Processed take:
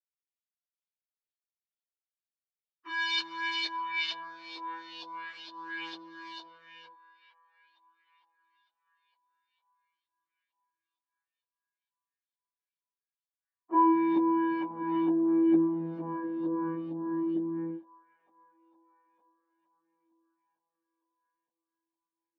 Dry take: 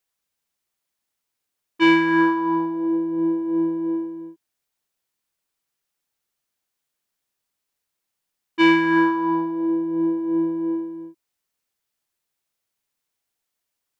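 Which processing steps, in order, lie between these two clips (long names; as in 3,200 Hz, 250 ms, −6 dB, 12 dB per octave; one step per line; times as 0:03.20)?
noise gate −21 dBFS, range −8 dB
dynamic equaliser 2,800 Hz, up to −4 dB, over −41 dBFS, Q 7.3
in parallel at +1 dB: downward compressor 16 to 1, threshold −24 dBFS, peak gain reduction 12.5 dB
on the sum: leveller curve on the samples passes 5
on a send: delay with a band-pass on its return 478 ms, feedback 52%, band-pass 1,500 Hz, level −16.5 dB
on the sum: chorus effect 0.34 Hz, delay 16 ms, depth 4.1 ms
auto-filter low-pass saw up 3.5 Hz 710–3,600 Hz
time stretch by phase vocoder 1.6×
band-pass filter sweep 4,500 Hz → 250 Hz, 0:13.28–0:13.96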